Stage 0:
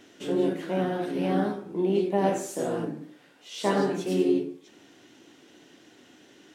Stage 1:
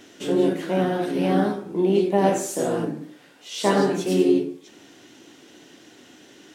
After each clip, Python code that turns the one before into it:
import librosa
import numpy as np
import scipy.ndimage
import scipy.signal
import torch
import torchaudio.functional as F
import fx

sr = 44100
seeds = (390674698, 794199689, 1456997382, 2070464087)

y = fx.bass_treble(x, sr, bass_db=0, treble_db=3)
y = y * librosa.db_to_amplitude(5.0)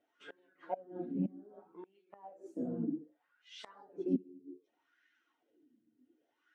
y = fx.bin_expand(x, sr, power=1.5)
y = fx.gate_flip(y, sr, shuts_db=-16.0, range_db=-25)
y = fx.wah_lfo(y, sr, hz=0.64, low_hz=210.0, high_hz=1700.0, q=5.5)
y = y * librosa.db_to_amplitude(2.5)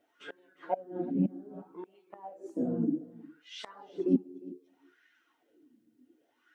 y = x + 10.0 ** (-20.5 / 20.0) * np.pad(x, (int(357 * sr / 1000.0), 0))[:len(x)]
y = y * librosa.db_to_amplitude(6.5)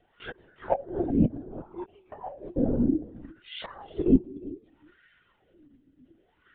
y = fx.lpc_vocoder(x, sr, seeds[0], excitation='whisper', order=16)
y = y * librosa.db_to_amplitude(6.0)